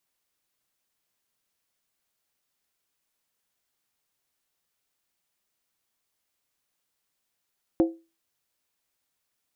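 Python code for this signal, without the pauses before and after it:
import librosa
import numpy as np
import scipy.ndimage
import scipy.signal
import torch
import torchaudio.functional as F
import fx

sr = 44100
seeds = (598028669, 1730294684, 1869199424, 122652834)

y = fx.strike_skin(sr, length_s=0.63, level_db=-14, hz=330.0, decay_s=0.29, tilt_db=8.5, modes=5)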